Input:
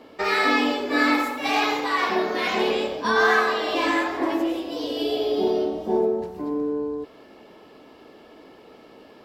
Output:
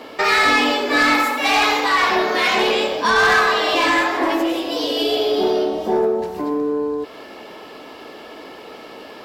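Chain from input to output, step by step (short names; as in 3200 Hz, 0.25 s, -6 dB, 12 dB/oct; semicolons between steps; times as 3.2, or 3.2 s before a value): low shelf 430 Hz -10 dB; soft clip -19.5 dBFS, distortion -14 dB; in parallel at +1 dB: compressor, threshold -38 dBFS, peak gain reduction 14.5 dB; on the sum: gain +8 dB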